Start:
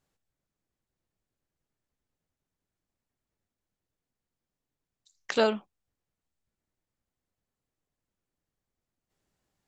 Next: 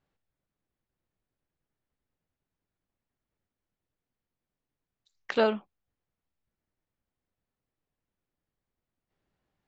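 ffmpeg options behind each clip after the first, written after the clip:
-af "lowpass=3.3k"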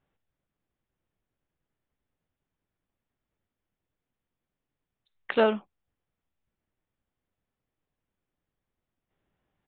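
-af "aresample=8000,aresample=44100,volume=2dB"

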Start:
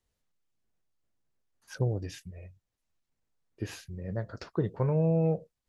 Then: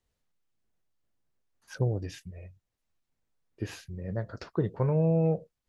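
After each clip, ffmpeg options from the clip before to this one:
-af "highshelf=f=5.9k:g=-4,volume=1dB"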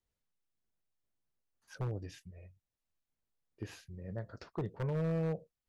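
-af "aeval=exprs='0.0944*(abs(mod(val(0)/0.0944+3,4)-2)-1)':c=same,volume=-8dB"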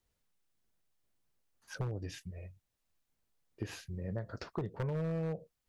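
-af "acompressor=threshold=-40dB:ratio=6,volume=6.5dB"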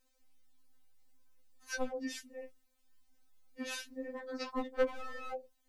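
-af "afftfilt=real='re*3.46*eq(mod(b,12),0)':imag='im*3.46*eq(mod(b,12),0)':win_size=2048:overlap=0.75,volume=8.5dB"

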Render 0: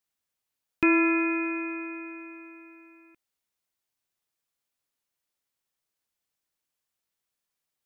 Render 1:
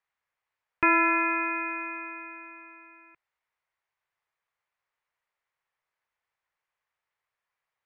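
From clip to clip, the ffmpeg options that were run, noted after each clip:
-filter_complex "[0:a]aemphasis=mode=reproduction:type=75fm,acrossover=split=2700[a][b];[b]acompressor=threshold=-46dB:ratio=4:attack=1:release=60[c];[a][c]amix=inputs=2:normalize=0,equalizer=f=125:t=o:w=1:g=3,equalizer=f=250:t=o:w=1:g=-12,equalizer=f=500:t=o:w=1:g=4,equalizer=f=1k:t=o:w=1:g=9,equalizer=f=2k:t=o:w=1:g=11,volume=-3dB"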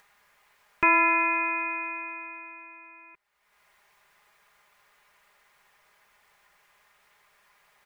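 -af "aecho=1:1:4.9:0.56,acompressor=mode=upward:threshold=-45dB:ratio=2.5"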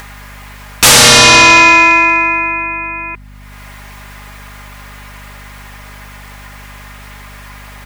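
-af "aeval=exprs='0.335*sin(PI/2*6.31*val(0)/0.335)':c=same,aeval=exprs='val(0)+0.00794*(sin(2*PI*50*n/s)+sin(2*PI*2*50*n/s)/2+sin(2*PI*3*50*n/s)/3+sin(2*PI*4*50*n/s)/4+sin(2*PI*5*50*n/s)/5)':c=same,volume=8dB"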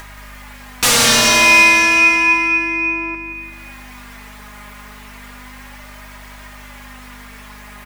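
-filter_complex "[0:a]asoftclip=type=tanh:threshold=-6dB,asplit=2[a][b];[b]aecho=0:1:176|352|528|704|880|1056|1232:0.398|0.227|0.129|0.0737|0.042|0.024|0.0137[c];[a][c]amix=inputs=2:normalize=0,flanger=delay=3.1:depth=1.7:regen=51:speed=0.32:shape=sinusoidal"

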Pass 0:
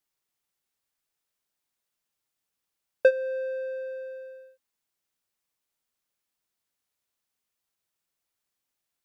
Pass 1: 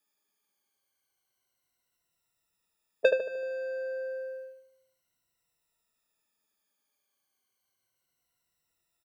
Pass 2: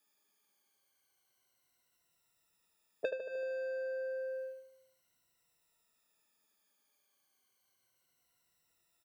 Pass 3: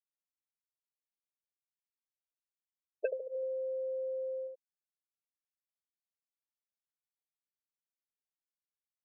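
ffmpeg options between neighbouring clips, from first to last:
-filter_complex "[0:a]afftfilt=real='re*pow(10,16/40*sin(2*PI*(2*log(max(b,1)*sr/1024/100)/log(2)-(-0.31)*(pts-256)/sr)))':imag='im*pow(10,16/40*sin(2*PI*(2*log(max(b,1)*sr/1024/100)/log(2)-(-0.31)*(pts-256)/sr)))':win_size=1024:overlap=0.75,asplit=2[a][b];[b]adelay=76,lowpass=f=2k:p=1,volume=-4.5dB,asplit=2[c][d];[d]adelay=76,lowpass=f=2k:p=1,volume=0.5,asplit=2[e][f];[f]adelay=76,lowpass=f=2k:p=1,volume=0.5,asplit=2[g][h];[h]adelay=76,lowpass=f=2k:p=1,volume=0.5,asplit=2[i][j];[j]adelay=76,lowpass=f=2k:p=1,volume=0.5,asplit=2[k][l];[l]adelay=76,lowpass=f=2k:p=1,volume=0.5[m];[c][e][g][i][k][m]amix=inputs=6:normalize=0[n];[a][n]amix=inputs=2:normalize=0"
-af "lowshelf=f=76:g=-5.5,acompressor=threshold=-40dB:ratio=4,volume=3dB"
-af "afftfilt=real='re*gte(hypot(re,im),0.0501)':imag='im*gte(hypot(re,im),0.0501)':win_size=1024:overlap=0.75,volume=2.5dB"

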